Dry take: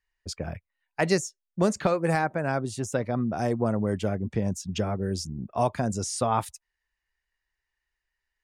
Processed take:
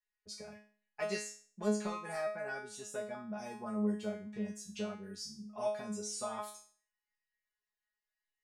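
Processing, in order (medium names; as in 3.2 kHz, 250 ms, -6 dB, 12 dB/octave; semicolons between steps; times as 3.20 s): bass shelf 280 Hz -9.5 dB; feedback comb 210 Hz, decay 0.43 s, harmonics all, mix 100%; trim +5.5 dB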